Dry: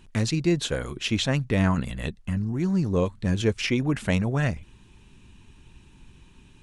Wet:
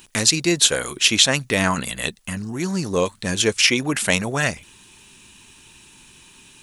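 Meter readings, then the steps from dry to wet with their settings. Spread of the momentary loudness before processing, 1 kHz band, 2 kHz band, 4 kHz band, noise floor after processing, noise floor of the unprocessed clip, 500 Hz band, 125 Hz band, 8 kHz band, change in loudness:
6 LU, +7.5 dB, +10.5 dB, +13.5 dB, −50 dBFS, −54 dBFS, +4.5 dB, −3.5 dB, +18.5 dB, +6.5 dB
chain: RIAA equalisation recording
level +7.5 dB

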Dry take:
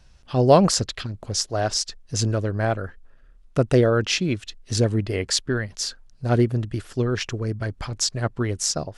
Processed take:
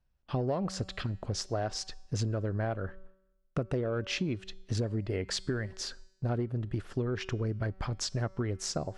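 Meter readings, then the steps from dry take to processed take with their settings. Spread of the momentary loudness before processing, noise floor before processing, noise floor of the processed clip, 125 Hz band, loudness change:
11 LU, −52 dBFS, −72 dBFS, −8.5 dB, −11.0 dB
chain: noise gate with hold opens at −39 dBFS
low-pass filter 1,800 Hz 6 dB per octave
in parallel at −7 dB: soft clipping −17 dBFS, distortion −10 dB
on the sum: tuned comb filter 190 Hz, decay 0.9 s, mix 40%
downward compressor 12 to 1, threshold −28 dBFS, peak gain reduction 16 dB

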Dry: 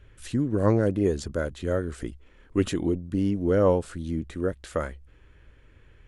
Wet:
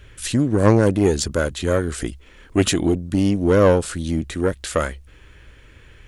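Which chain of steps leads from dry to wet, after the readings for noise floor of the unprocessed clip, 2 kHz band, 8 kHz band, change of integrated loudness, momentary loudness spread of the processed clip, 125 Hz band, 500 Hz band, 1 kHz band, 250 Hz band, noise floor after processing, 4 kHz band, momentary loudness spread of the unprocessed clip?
−55 dBFS, +10.5 dB, +16.0 dB, +7.0 dB, 10 LU, +7.0 dB, +6.5 dB, +8.0 dB, +6.5 dB, −48 dBFS, +14.0 dB, 10 LU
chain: one-sided soft clipper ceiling −16.5 dBFS
high-shelf EQ 2,100 Hz +9.5 dB
level +7.5 dB

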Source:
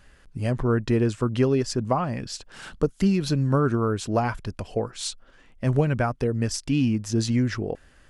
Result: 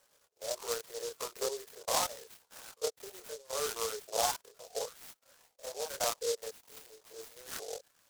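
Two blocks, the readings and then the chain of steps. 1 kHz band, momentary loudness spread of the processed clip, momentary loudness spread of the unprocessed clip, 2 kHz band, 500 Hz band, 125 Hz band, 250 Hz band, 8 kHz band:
−8.0 dB, 18 LU, 11 LU, −10.5 dB, −11.0 dB, −38.5 dB, −33.5 dB, −0.5 dB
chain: spectrum averaged block by block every 50 ms
reverb reduction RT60 0.57 s
low-pass filter 2,200 Hz 12 dB per octave
output level in coarse steps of 10 dB
Butterworth high-pass 440 Hz 72 dB per octave
multi-voice chorus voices 2, 0.58 Hz, delay 26 ms, depth 1.7 ms
dynamic equaliser 1,000 Hz, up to +3 dB, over −51 dBFS, Q 1.2
short delay modulated by noise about 5,600 Hz, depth 0.15 ms
level +3.5 dB

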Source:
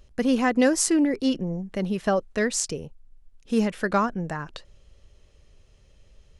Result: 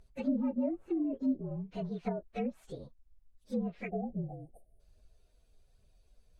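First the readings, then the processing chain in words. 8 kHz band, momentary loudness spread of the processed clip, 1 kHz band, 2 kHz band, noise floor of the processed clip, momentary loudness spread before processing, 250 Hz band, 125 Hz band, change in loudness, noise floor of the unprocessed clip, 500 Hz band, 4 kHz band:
below −40 dB, 16 LU, −17.0 dB, −22.0 dB, −69 dBFS, 11 LU, −10.0 dB, −8.0 dB, −11.5 dB, −57 dBFS, −13.0 dB, below −25 dB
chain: partials spread apart or drawn together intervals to 115%
time-frequency box erased 0:03.89–0:04.80, 820–8,500 Hz
phase shifter 1.2 Hz, delay 4.5 ms, feedback 31%
treble cut that deepens with the level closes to 470 Hz, closed at −20 dBFS
level −8 dB

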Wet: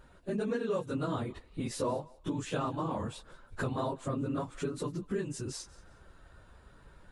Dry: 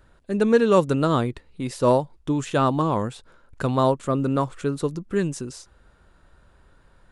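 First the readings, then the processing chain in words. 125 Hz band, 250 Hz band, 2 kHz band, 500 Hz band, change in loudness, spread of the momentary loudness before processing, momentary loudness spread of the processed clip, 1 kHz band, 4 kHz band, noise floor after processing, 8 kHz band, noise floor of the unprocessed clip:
−11.5 dB, −12.0 dB, −10.5 dB, −13.5 dB, −13.0 dB, 11 LU, 7 LU, −13.5 dB, −9.0 dB, −59 dBFS, −6.0 dB, −57 dBFS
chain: random phases in long frames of 50 ms
downward compressor 4 to 1, threshold −33 dBFS, peak gain reduction 18.5 dB
feedback echo with a high-pass in the loop 183 ms, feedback 27%, high-pass 750 Hz, level −21 dB

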